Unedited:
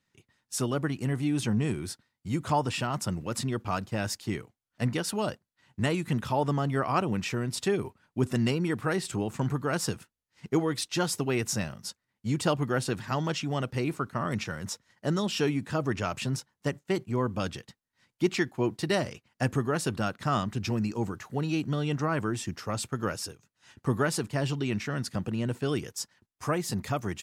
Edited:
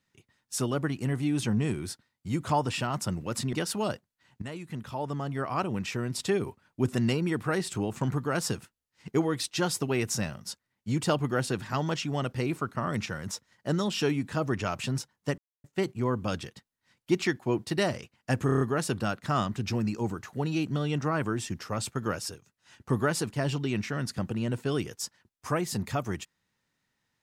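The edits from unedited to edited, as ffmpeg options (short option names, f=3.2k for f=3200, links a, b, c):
-filter_complex "[0:a]asplit=9[a][b][c][d][e][f][g][h][i];[a]atrim=end=3.532[j];[b]atrim=start=4.908:end=5.8,asetpts=PTS-STARTPTS,afade=t=out:st=0.888:d=0.004:c=hsin:silence=0.223872[k];[c]atrim=start=5.8:end=16.76,asetpts=PTS-STARTPTS,afade=t=in:d=1.88:silence=0.223872,afade=t=out:st=10.956:d=0.004:c=hsin,apad=pad_dur=0.26[l];[d]atrim=start=16.76:end=19.612,asetpts=PTS-STARTPTS,afade=t=in:d=0.004:c=hsin[m];[e]atrim=start=19.578:end=19.612[n];[f]atrim=start=19.578:end=19.612[o];[g]atrim=start=19.578:end=19.612[p];[h]atrim=start=19.578:end=19.612[q];[i]atrim=start=19.578[r];[k][l][m]concat=n=3:v=0:a=1[s];[j][s]acrossfade=d=0.004:c1=hsin:c2=hsin[t];[t][n]acrossfade=d=0.004:c1=hsin:c2=hsin[u];[u][o]acrossfade=d=0.004:c1=hsin:c2=hsin[v];[v][p]acrossfade=d=0.004:c1=hsin:c2=hsin[w];[w][q]acrossfade=d=0.004:c1=hsin:c2=hsin[x];[x][r]acrossfade=d=0.004:c1=hsin:c2=hsin"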